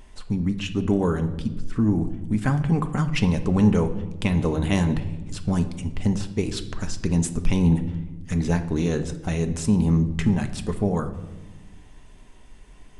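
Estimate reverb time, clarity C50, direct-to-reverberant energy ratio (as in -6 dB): 1.1 s, 12.5 dB, 6.5 dB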